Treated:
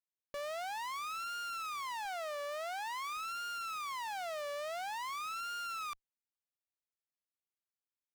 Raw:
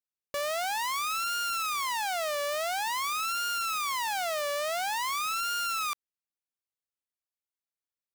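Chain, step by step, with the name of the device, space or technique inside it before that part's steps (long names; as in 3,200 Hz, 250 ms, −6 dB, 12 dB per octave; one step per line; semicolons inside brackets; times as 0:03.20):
0:02.05–0:03.17: high-pass filter 200 Hz 24 dB per octave
tube preamp driven hard (tube saturation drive 28 dB, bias 0.35; high-shelf EQ 5,300 Hz −6.5 dB)
level −6 dB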